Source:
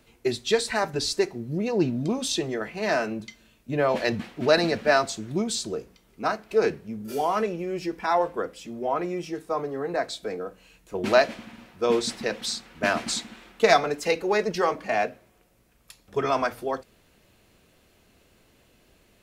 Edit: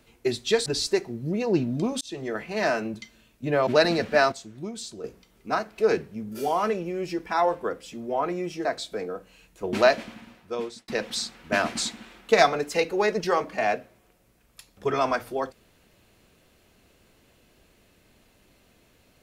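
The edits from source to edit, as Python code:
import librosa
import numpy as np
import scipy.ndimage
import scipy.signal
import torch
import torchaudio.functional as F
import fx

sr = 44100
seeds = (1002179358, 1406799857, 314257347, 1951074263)

y = fx.edit(x, sr, fx.cut(start_s=0.66, length_s=0.26),
    fx.fade_in_span(start_s=2.27, length_s=0.33),
    fx.cut(start_s=3.93, length_s=0.47),
    fx.clip_gain(start_s=5.05, length_s=0.72, db=-8.5),
    fx.cut(start_s=9.38, length_s=0.58),
    fx.fade_out_span(start_s=11.43, length_s=0.76), tone=tone)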